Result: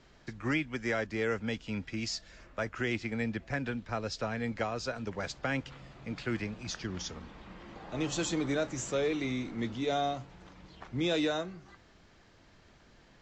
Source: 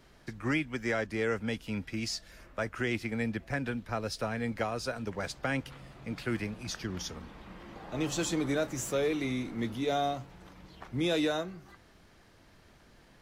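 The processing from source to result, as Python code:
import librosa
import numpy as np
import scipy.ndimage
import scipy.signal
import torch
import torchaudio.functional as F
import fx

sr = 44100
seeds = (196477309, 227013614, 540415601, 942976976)

y = scipy.signal.sosfilt(scipy.signal.ellip(4, 1.0, 40, 7400.0, 'lowpass', fs=sr, output='sos'), x)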